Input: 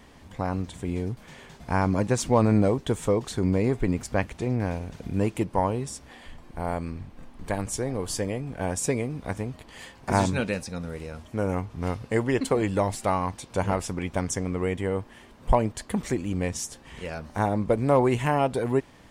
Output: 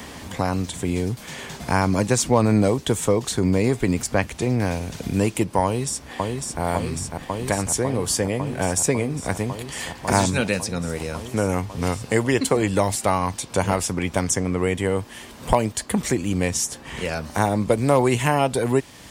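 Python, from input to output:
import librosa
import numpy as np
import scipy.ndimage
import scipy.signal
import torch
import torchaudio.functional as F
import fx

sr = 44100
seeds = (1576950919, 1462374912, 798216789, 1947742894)

y = fx.echo_throw(x, sr, start_s=5.64, length_s=0.98, ms=550, feedback_pct=85, wet_db=-5.0)
y = scipy.signal.sosfilt(scipy.signal.butter(2, 50.0, 'highpass', fs=sr, output='sos'), y)
y = fx.high_shelf(y, sr, hz=3600.0, db=9.5)
y = fx.band_squash(y, sr, depth_pct=40)
y = y * librosa.db_to_amplitude(4.0)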